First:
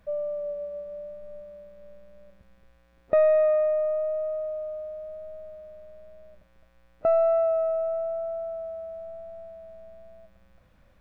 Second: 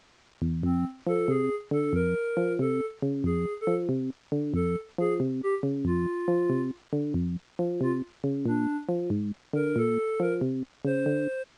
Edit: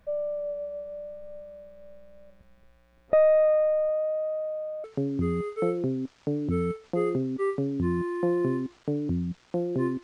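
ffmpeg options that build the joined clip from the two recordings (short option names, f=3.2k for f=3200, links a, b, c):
-filter_complex "[0:a]asettb=1/sr,asplit=3[a][b][c];[a]atrim=end=3.894[d];[b]atrim=start=3.89:end=4.84,asetpts=PTS-STARTPTS,afade=t=in:d=0.004:c=qsin,afade=t=out:st=0.946:d=0.004:c=qsin,highpass=130[e];[c]atrim=start=4.836[f];[d][e]acrossfade=d=0.004:c1=hsin:c2=qsin[g];[g][f]acrossfade=d=0.004:c1=qsin:c2=hsin,apad=whole_dur=10.03,atrim=end=10.03,atrim=end=4.842[h];[1:a]atrim=start=2.888:end=8.08[i];[h][i]acrossfade=d=0.004:c1=hsin:c2=hsin"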